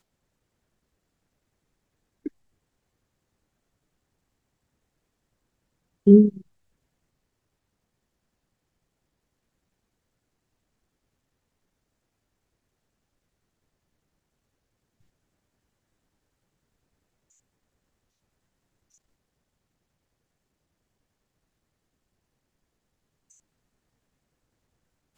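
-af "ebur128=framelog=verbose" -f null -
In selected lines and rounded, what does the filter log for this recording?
Integrated loudness:
  I:         -17.2 LUFS
  Threshold: -33.2 LUFS
Loudness range:
  LRA:         0.7 LU
  Threshold: -48.2 LUFS
  LRA low:   -24.9 LUFS
  LRA high:  -24.2 LUFS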